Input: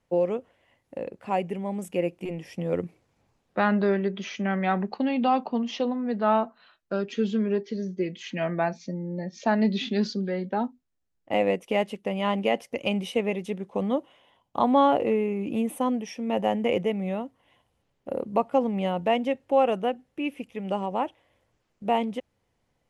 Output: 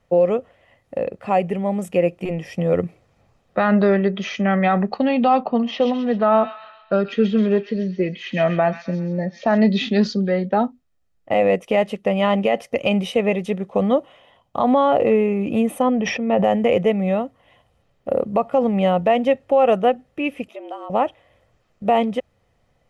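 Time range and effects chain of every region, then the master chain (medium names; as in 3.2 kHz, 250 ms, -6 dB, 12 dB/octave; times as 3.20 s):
5.42–9.58 s: low-pass 3.7 kHz + feedback echo behind a high-pass 131 ms, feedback 46%, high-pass 2.6 kHz, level -4 dB
15.82–16.44 s: distance through air 200 m + decay stretcher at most 46 dB/s
20.48–20.90 s: compression 2:1, threshold -48 dBFS + frequency shift +150 Hz
whole clip: treble shelf 4.8 kHz -7.5 dB; comb 1.6 ms, depth 36%; loudness maximiser +15.5 dB; trim -6.5 dB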